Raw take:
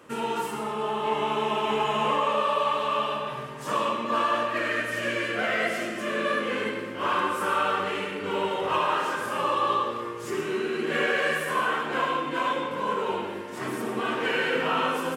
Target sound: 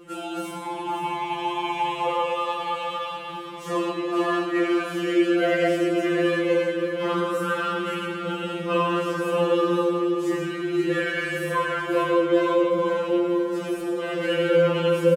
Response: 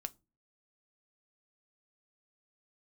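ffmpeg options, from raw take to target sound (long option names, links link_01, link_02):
-af "lowshelf=frequency=630:width_type=q:width=1.5:gain=8,aecho=1:1:533:0.376,afftfilt=real='re*2.83*eq(mod(b,8),0)':imag='im*2.83*eq(mod(b,8),0)':win_size=2048:overlap=0.75,volume=1dB"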